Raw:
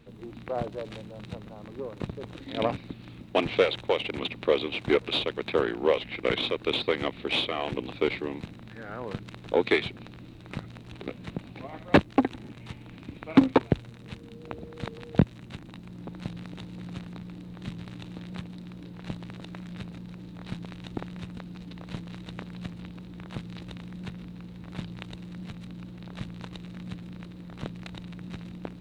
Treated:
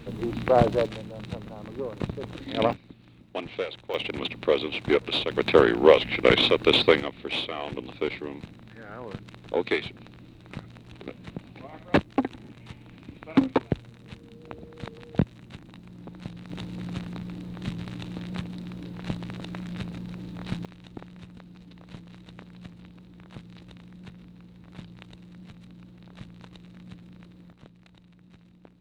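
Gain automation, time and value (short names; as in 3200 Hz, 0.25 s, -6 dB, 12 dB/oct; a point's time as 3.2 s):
+12 dB
from 0.86 s +3.5 dB
from 2.73 s -8.5 dB
from 3.94 s +1 dB
from 5.31 s +8 dB
from 7 s -2.5 dB
from 16.5 s +4.5 dB
from 20.65 s -6.5 dB
from 27.52 s -14.5 dB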